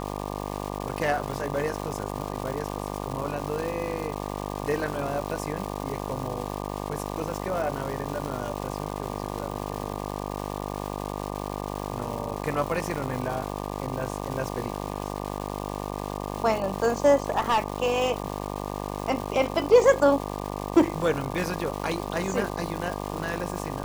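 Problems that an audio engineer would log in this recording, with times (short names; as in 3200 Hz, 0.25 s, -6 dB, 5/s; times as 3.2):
buzz 50 Hz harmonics 24 -33 dBFS
crackle 580/s -32 dBFS
17.29–17.6 clipped -17.5 dBFS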